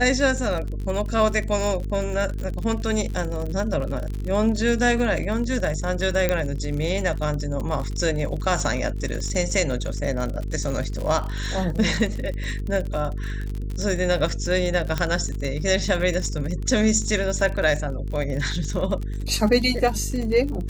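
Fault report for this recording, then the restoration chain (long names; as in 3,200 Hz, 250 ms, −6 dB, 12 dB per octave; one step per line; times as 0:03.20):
mains buzz 50 Hz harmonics 9 −28 dBFS
surface crackle 51 per second −28 dBFS
0:06.29: click −7 dBFS
0:14.98: click −10 dBFS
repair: click removal
hum removal 50 Hz, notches 9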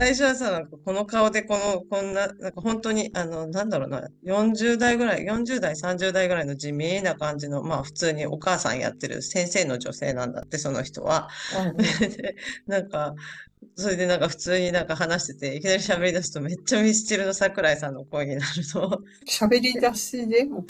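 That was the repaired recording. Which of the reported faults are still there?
none of them is left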